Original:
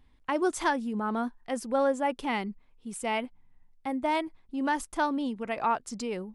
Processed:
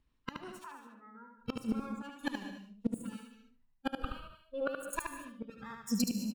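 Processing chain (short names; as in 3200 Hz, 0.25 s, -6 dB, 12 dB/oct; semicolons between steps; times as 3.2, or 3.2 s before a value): minimum comb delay 0.72 ms; spectral noise reduction 19 dB; 2.34–3.07 sample leveller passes 2; 3.88–4.83 fixed phaser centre 1300 Hz, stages 8; flipped gate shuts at -28 dBFS, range -27 dB; 0.64–1.38 speaker cabinet 380–2000 Hz, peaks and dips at 600 Hz -8 dB, 990 Hz +7 dB, 1700 Hz -3 dB; feedback echo 74 ms, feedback 21%, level -4.5 dB; non-linear reverb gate 0.24 s rising, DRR 9 dB; gain +8 dB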